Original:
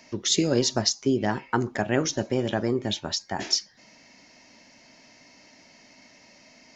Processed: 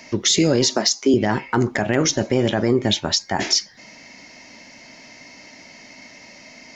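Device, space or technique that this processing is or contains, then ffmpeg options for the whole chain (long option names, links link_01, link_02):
clipper into limiter: -filter_complex "[0:a]asettb=1/sr,asplit=3[link_01][link_02][link_03];[link_01]atrim=end=0.684[link_04];[link_02]atrim=start=0.68:end=1.14,asetpts=PTS-STARTPTS,afade=type=in:duration=0.004:curve=qsin,afade=type=out:start_time=0.456:duration=0.004:curve=qsin,highpass=frequency=230:width=0.5412,highpass=frequency=230:width=1.3066[link_05];[link_03]atrim=start=1.136[link_06];[link_04][link_05]acrossfade=duration=0.004:curve1=hsin:curve2=qsin[link_07];[link_07][link_06]acrossfade=duration=0.004:curve1=qsin:curve2=hsin,equalizer=frequency=2100:width=7.4:gain=5.5,asoftclip=type=hard:threshold=-10dB,alimiter=limit=-16.5dB:level=0:latency=1:release=30,volume=9dB"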